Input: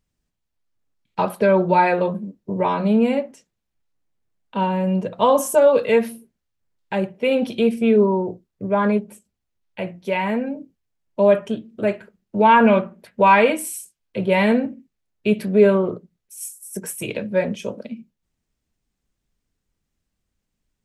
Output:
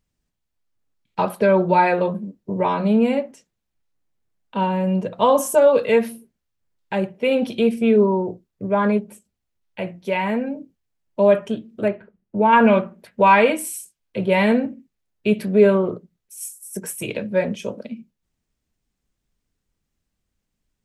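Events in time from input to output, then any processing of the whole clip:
11.88–12.53 tape spacing loss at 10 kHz 33 dB

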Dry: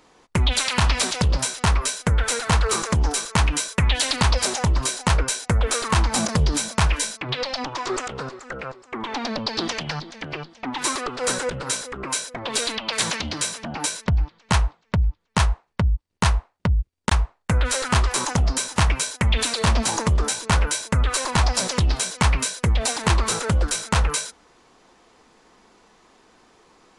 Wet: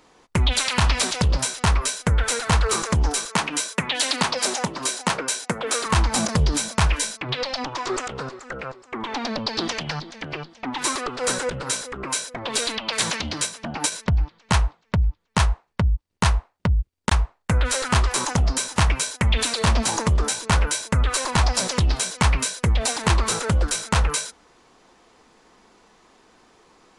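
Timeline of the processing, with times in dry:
3.27–5.86 HPF 170 Hz 24 dB/oct
13.42–13.92 transient shaper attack +3 dB, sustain -6 dB

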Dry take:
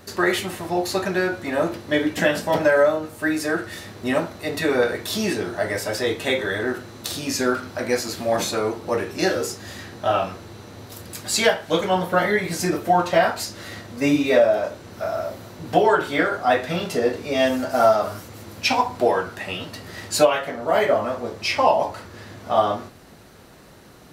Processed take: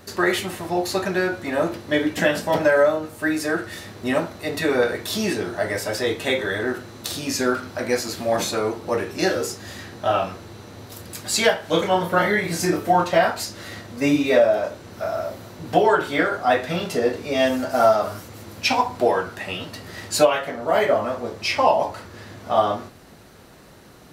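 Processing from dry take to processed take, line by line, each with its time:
11.61–13.04 doubler 30 ms -6.5 dB

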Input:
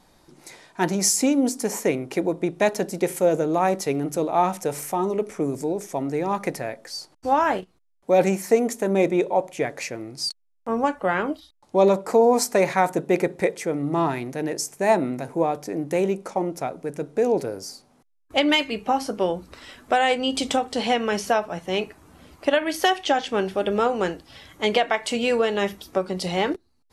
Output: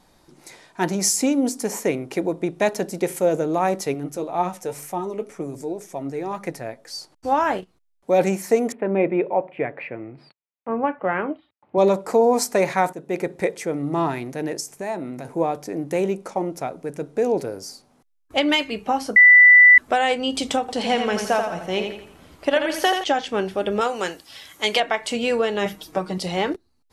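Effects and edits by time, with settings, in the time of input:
3.94–6.88 flange 2 Hz, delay 5.1 ms, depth 4.1 ms, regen +53%
8.72–11.78 elliptic band-pass 100–2500 Hz
12.93–13.63 fade in equal-power, from -13.5 dB
14.6–15.25 compressor 2:1, threshold -31 dBFS
19.16–19.78 bleep 1980 Hz -6.5 dBFS
20.6–23.04 feedback echo 84 ms, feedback 41%, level -6 dB
23.81–24.8 tilt +3 dB/oct
25.65–26.18 comb 6.4 ms, depth 82%

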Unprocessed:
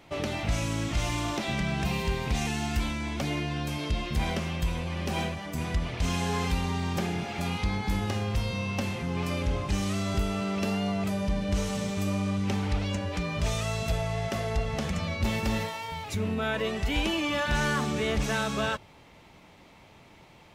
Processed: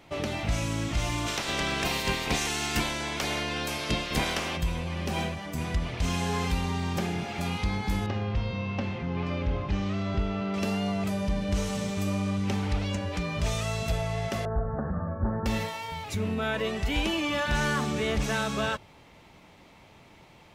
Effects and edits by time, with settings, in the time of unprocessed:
1.26–4.56 spectral limiter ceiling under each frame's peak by 18 dB
8.06–10.54 air absorption 210 m
14.45–15.46 steep low-pass 1700 Hz 96 dB/oct

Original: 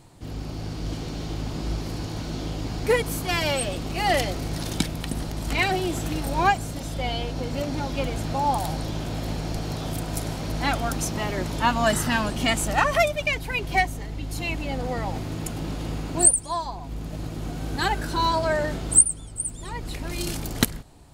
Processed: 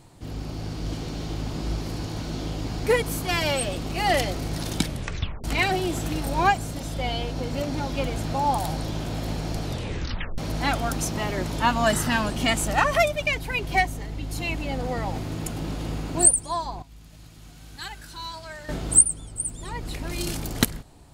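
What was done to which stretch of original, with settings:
4.87 tape stop 0.57 s
9.63 tape stop 0.75 s
16.82–18.69 passive tone stack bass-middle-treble 5-5-5

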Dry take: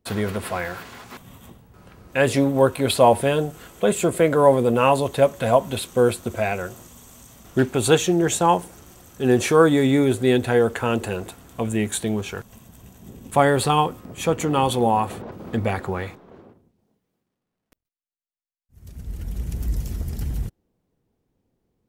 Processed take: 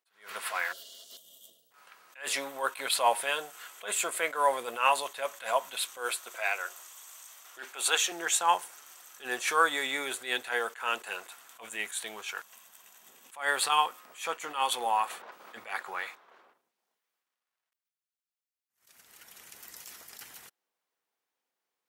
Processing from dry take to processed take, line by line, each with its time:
0.73–1.71 spectral gain 710–2800 Hz -26 dB
5.97–8.12 HPF 330 Hz
whole clip: Chebyshev high-pass 1300 Hz, order 2; attack slew limiter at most 170 dB/s

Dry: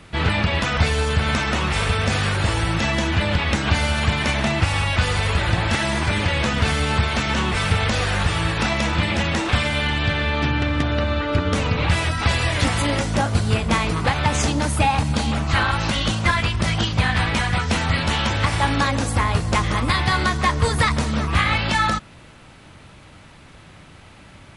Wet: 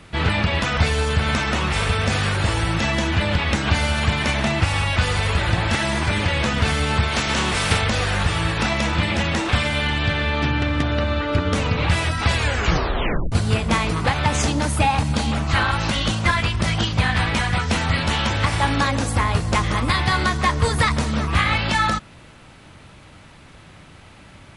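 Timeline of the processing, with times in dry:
7.12–7.8 spectral contrast lowered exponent 0.7
12.35 tape stop 0.97 s

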